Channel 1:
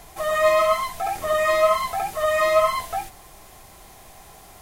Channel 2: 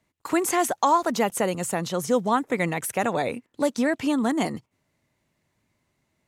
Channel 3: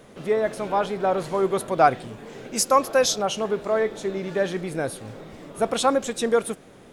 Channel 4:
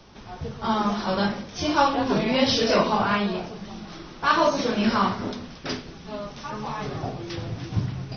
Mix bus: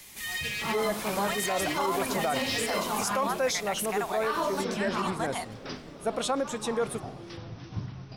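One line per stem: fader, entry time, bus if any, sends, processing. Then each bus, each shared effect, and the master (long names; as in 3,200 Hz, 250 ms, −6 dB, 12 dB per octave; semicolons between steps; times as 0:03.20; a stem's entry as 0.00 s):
+1.5 dB, 0.00 s, no send, wavefolder on the positive side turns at −20 dBFS; Butterworth high-pass 1,800 Hz 48 dB per octave; downward compressor, threshold −32 dBFS, peak gain reduction 8 dB
−3.5 dB, 0.95 s, no send, Butterworth high-pass 650 Hz 96 dB per octave; brickwall limiter −18.5 dBFS, peak gain reduction 7 dB
−5.5 dB, 0.45 s, no send, no processing
−9.5 dB, 0.00 s, no send, parametric band 1,100 Hz +3 dB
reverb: not used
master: brickwall limiter −19 dBFS, peak gain reduction 10 dB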